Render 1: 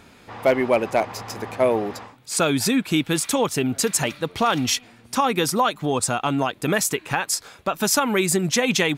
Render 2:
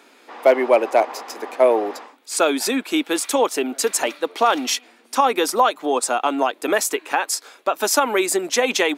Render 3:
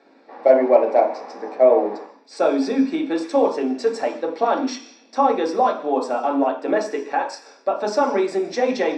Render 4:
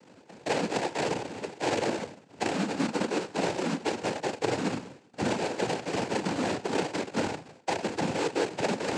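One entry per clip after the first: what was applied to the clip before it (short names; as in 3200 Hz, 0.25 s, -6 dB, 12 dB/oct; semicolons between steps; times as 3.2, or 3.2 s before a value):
steep high-pass 270 Hz 36 dB/oct; dynamic EQ 710 Hz, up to +5 dB, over -33 dBFS, Q 0.76
LPF 3500 Hz 12 dB/oct; reverb RT60 0.50 s, pre-delay 3 ms, DRR 0 dB; gain -12 dB
reverse; compressor 6:1, threshold -26 dBFS, peak gain reduction 17 dB; reverse; sample-rate reducer 1100 Hz, jitter 20%; noise vocoder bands 8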